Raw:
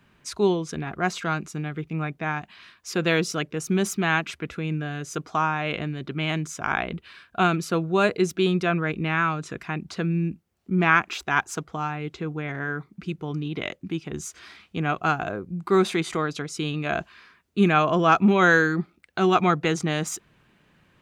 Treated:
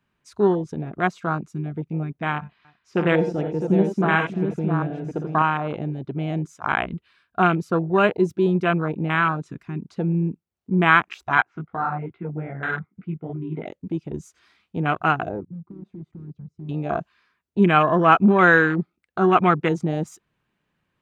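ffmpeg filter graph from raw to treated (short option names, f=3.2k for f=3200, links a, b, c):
-filter_complex "[0:a]asettb=1/sr,asplit=3[a][b][c];[a]atrim=end=2.334[d];[b]atrim=start=2.33:end=5.42,asetpts=PTS-STARTPTS,afade=t=in:d=0.004:c=qsin,afade=t=out:st=3.086:d=0.004:c=qsin,aemphasis=mode=reproduction:type=75fm,aecho=1:1:58|85|87|317|662:0.355|0.251|0.299|0.251|0.531,atrim=end_sample=136269[e];[c]atrim=start=5.416[f];[d][e]acrossfade=d=0.004:c1=hsin:c2=qsin[g];[g][f]acrossfade=d=0.004:c1=qsin:c2=hsin,asettb=1/sr,asplit=3[h][i][j];[h]atrim=end=11.374[k];[i]atrim=start=11.37:end=13.66,asetpts=PTS-STARTPTS,afade=t=in:d=0.004:c=qsin,afade=t=out:st=2.286:d=0.004:c=qsin,flanger=delay=15.5:depth=3.5:speed=2.5,highpass=130,equalizer=f=150:t=q:w=4:g=5,equalizer=f=720:t=q:w=4:g=6,equalizer=f=1.4k:t=q:w=4:g=7,equalizer=f=2.1k:t=q:w=4:g=7,lowpass=f=2.9k:w=0.5412,lowpass=f=2.9k:w=1.3066[l];[j]atrim=start=13.656[m];[k][l]acrossfade=d=0.004:c1=hsin:c2=qsin[n];[n][m]acrossfade=d=0.004:c1=qsin:c2=hsin,asettb=1/sr,asplit=3[o][p][q];[o]atrim=end=15.454[r];[p]atrim=start=15.45:end=16.69,asetpts=PTS-STARTPTS,afade=t=in:d=0.004:c=qsin,afade=t=out:st=1.236:d=0.004:c=qsin,acompressor=threshold=-22dB:ratio=20:attack=3.2:release=140:knee=1:detection=peak,bandpass=f=110:t=q:w=1.2,volume=34dB,asoftclip=hard,volume=-34dB[s];[q]atrim=start=16.686[t];[r][s]acrossfade=d=0.004:c1=hsin:c2=qsin[u];[u][t]acrossfade=d=0.004:c1=qsin:c2=hsin,afwtdn=0.0501,equalizer=f=1k:t=o:w=0.77:g=2,volume=2.5dB"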